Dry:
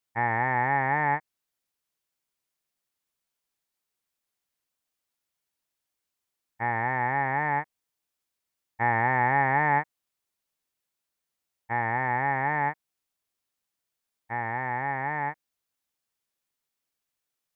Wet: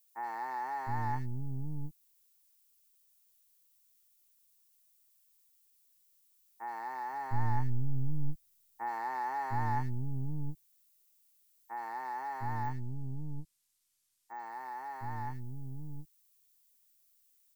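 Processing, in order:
gain on one half-wave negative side −7 dB
drawn EQ curve 120 Hz 0 dB, 360 Hz −6 dB, 550 Hz −20 dB, 1,100 Hz −5 dB, 2,800 Hz −28 dB, 4,800 Hz −14 dB
three-band delay without the direct sound mids, highs, lows 70/710 ms, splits 370/2,200 Hz
background noise violet −73 dBFS
0:07.13–0:08.89: low-shelf EQ 130 Hz +11.5 dB
0:12.64–0:14.52: bad sample-rate conversion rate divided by 2×, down filtered, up hold
level +4 dB

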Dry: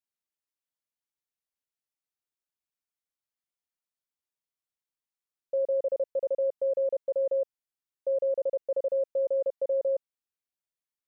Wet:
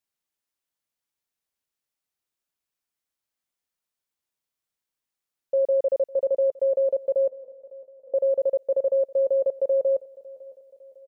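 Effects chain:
0:07.29–0:08.14: stiff-string resonator 250 Hz, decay 0.74 s, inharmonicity 0.002
on a send: repeating echo 554 ms, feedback 51%, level −21 dB
on the sum: level +5.5 dB

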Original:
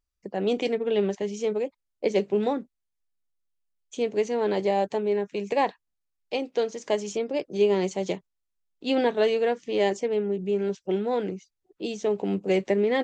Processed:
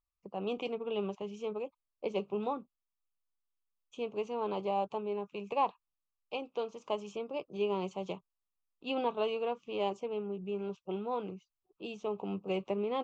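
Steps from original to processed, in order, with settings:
drawn EQ curve 160 Hz 0 dB, 290 Hz −5 dB, 670 Hz −1 dB, 1,200 Hz +10 dB, 1,800 Hz −21 dB, 2,600 Hz +4 dB, 4,300 Hz −9 dB, 7,900 Hz −13 dB
level −8 dB

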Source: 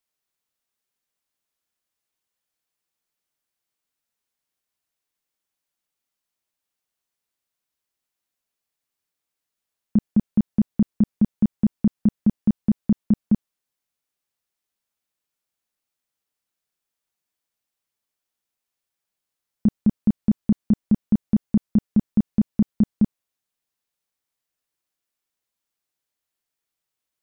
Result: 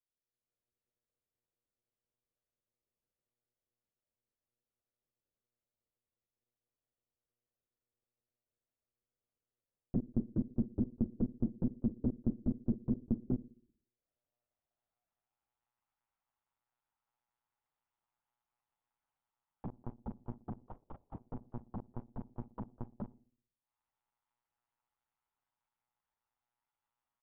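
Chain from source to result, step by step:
low-shelf EQ 500 Hz −4 dB
comb filter 5.5 ms, depth 65%
automatic gain control gain up to 9 dB
brickwall limiter −16.5 dBFS, peak gain reduction 13.5 dB
transient designer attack +6 dB, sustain −11 dB
0:20.66–0:21.15: frequency shifter −120 Hz
band-pass filter sweep 370 Hz → 890 Hz, 0:13.33–0:15.76
on a send: feedback echo with a band-pass in the loop 61 ms, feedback 56%, band-pass 320 Hz, level −16.5 dB
on the sum: one-pitch LPC vocoder at 8 kHz 120 Hz
level −3.5 dB

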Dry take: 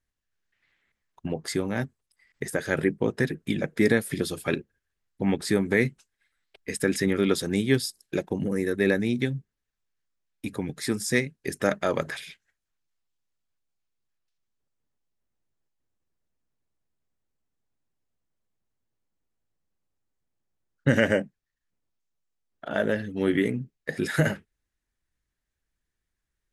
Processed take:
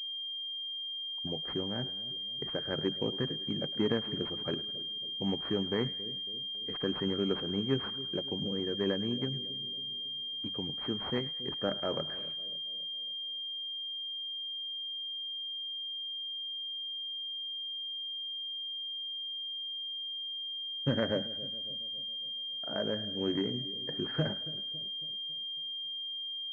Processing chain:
echo with a time of its own for lows and highs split 600 Hz, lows 276 ms, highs 105 ms, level −15.5 dB
switching amplifier with a slow clock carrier 3,200 Hz
level −8.5 dB

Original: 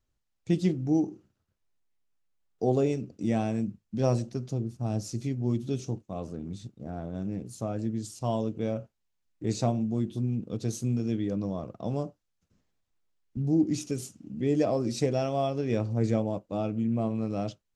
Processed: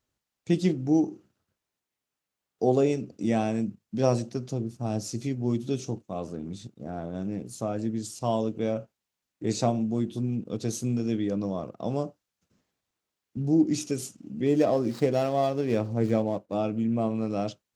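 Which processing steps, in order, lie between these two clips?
0:14.46–0:16.54: running median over 15 samples
high-pass filter 190 Hz 6 dB per octave
every ending faded ahead of time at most 560 dB per second
level +4 dB

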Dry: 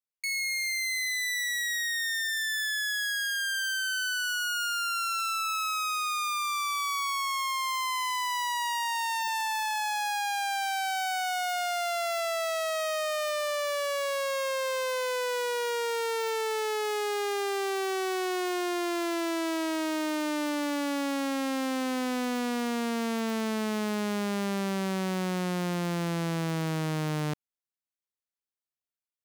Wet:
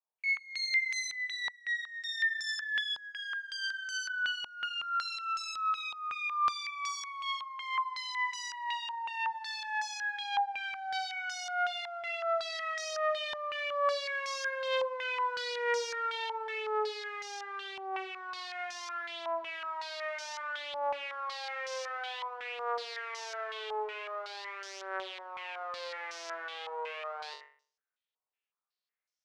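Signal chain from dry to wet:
Chebyshev high-pass filter 410 Hz, order 6
brickwall limiter −31.5 dBFS, peak gain reduction 12 dB
flutter between parallel walls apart 3.6 metres, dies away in 0.48 s
low-pass on a step sequencer 5.4 Hz 920–5,700 Hz
level −2.5 dB

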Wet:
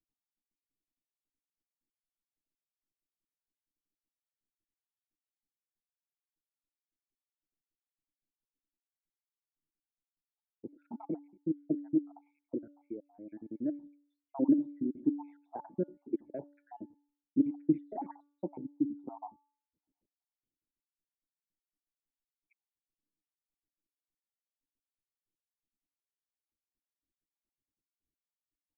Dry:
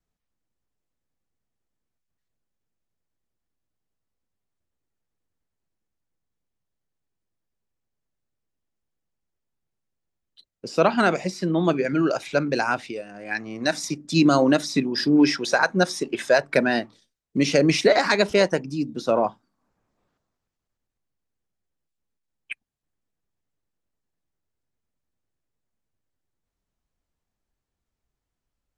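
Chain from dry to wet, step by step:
time-frequency cells dropped at random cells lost 74%
formant resonators in series u
hum removal 288.6 Hz, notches 6

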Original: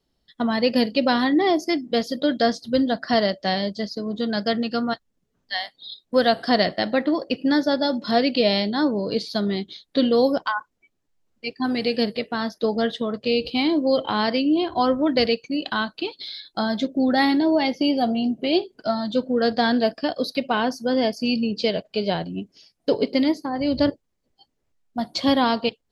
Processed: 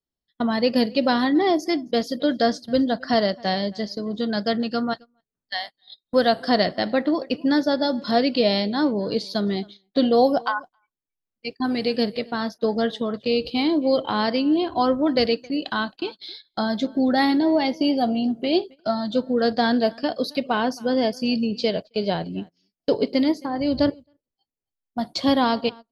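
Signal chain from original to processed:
0:09.55–0:10.51: parametric band 740 Hz +6 dB → +12.5 dB 0.24 octaves
slap from a distant wall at 46 metres, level −24 dB
dynamic equaliser 2,500 Hz, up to −3 dB, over −37 dBFS, Q 1.3
noise gate −35 dBFS, range −19 dB

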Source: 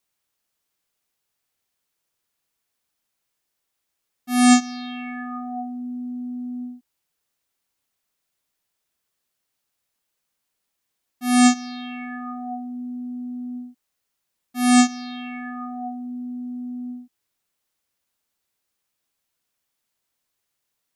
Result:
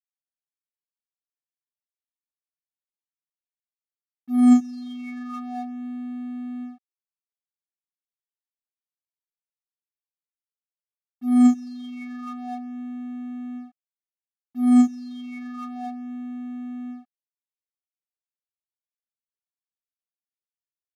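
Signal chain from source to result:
spectral envelope exaggerated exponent 2
dead-zone distortion −44.5 dBFS

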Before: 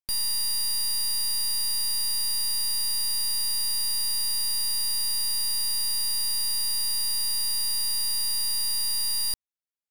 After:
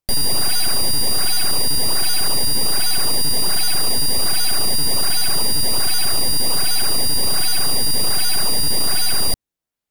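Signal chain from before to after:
low-shelf EQ 380 Hz +7.5 dB
in parallel at −9 dB: sample-and-hold swept by an LFO 21×, swing 160% 1.3 Hz
on the sum: level +6.5 dB

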